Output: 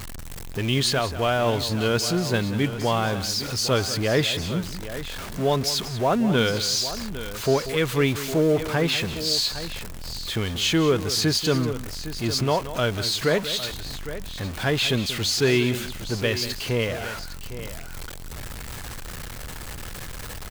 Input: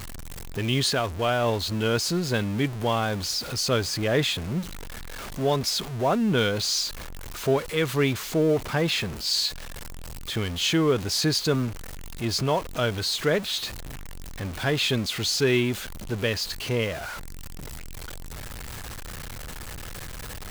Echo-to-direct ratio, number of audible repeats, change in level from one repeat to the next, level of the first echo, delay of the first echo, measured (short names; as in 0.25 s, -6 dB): -10.0 dB, 2, no steady repeat, -13.5 dB, 0.187 s